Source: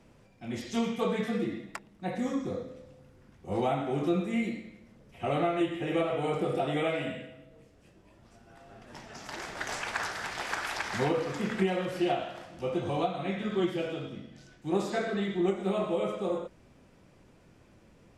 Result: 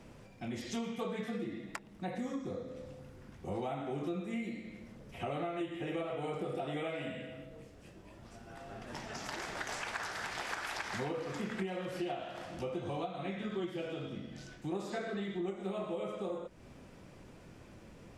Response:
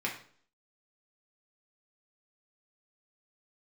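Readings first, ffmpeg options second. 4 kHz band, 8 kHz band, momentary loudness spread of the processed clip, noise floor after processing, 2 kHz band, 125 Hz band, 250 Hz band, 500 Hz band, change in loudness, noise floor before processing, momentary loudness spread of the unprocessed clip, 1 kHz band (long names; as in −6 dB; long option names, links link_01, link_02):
−5.5 dB, −4.0 dB, 16 LU, −55 dBFS, −5.5 dB, −7.0 dB, −7.5 dB, −8.0 dB, −8.0 dB, −59 dBFS, 14 LU, −7.5 dB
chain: -af "acompressor=threshold=-44dB:ratio=3,volume=4.5dB"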